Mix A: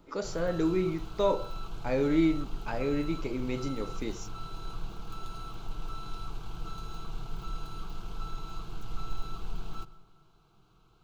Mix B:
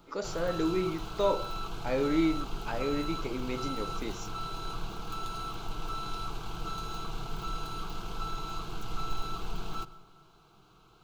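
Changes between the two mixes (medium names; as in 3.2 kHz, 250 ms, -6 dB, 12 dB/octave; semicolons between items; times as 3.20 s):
background +7.0 dB; master: add bass shelf 170 Hz -8.5 dB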